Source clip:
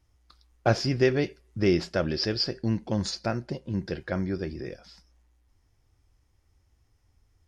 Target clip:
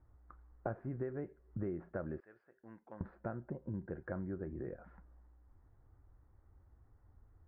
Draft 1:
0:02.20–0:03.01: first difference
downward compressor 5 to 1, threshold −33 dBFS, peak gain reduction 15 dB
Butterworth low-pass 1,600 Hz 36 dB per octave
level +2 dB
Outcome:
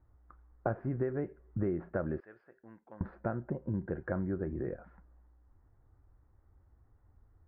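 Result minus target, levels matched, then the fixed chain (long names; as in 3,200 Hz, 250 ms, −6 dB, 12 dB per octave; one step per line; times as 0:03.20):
downward compressor: peak gain reduction −7 dB
0:02.20–0:03.01: first difference
downward compressor 5 to 1, threshold −41.5 dBFS, peak gain reduction 21.5 dB
Butterworth low-pass 1,600 Hz 36 dB per octave
level +2 dB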